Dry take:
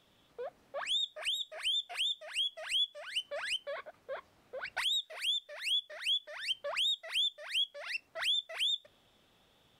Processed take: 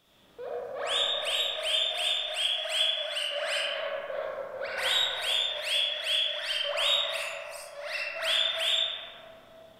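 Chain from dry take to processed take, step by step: 2.02–3.55 s: steep high-pass 190 Hz 36 dB/octave; treble shelf 9.7 kHz +6.5 dB; 7.16–7.68 s: elliptic band-stop 1–5.1 kHz; reverberation RT60 3.4 s, pre-delay 10 ms, DRR -8 dB

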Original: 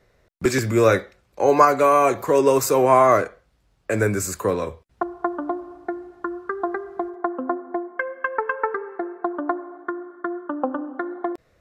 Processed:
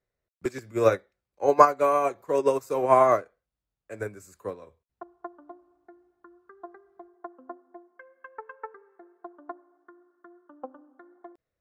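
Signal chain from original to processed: dynamic bell 630 Hz, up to +4 dB, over -27 dBFS, Q 0.82; upward expansion 2.5:1, over -22 dBFS; trim -2.5 dB

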